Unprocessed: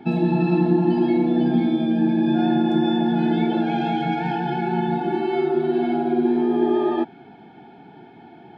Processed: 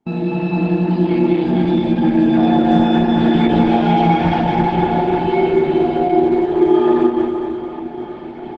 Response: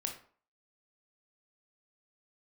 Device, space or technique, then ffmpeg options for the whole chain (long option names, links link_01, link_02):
speakerphone in a meeting room: -filter_complex "[0:a]asplit=3[link_01][link_02][link_03];[link_01]afade=type=out:start_time=4.83:duration=0.02[link_04];[link_02]adynamicequalizer=threshold=0.0158:dfrequency=150:dqfactor=1.1:tfrequency=150:tqfactor=1.1:attack=5:release=100:ratio=0.375:range=2:mode=cutabove:tftype=bell,afade=type=in:start_time=4.83:duration=0.02,afade=type=out:start_time=5.43:duration=0.02[link_05];[link_03]afade=type=in:start_time=5.43:duration=0.02[link_06];[link_04][link_05][link_06]amix=inputs=3:normalize=0,aecho=1:1:200|460|798|1237|1809:0.631|0.398|0.251|0.158|0.1[link_07];[1:a]atrim=start_sample=2205[link_08];[link_07][link_08]afir=irnorm=-1:irlink=0,dynaudnorm=framelen=340:gausssize=7:maxgain=12.5dB,agate=range=-27dB:threshold=-33dB:ratio=16:detection=peak,volume=-1dB" -ar 48000 -c:a libopus -b:a 12k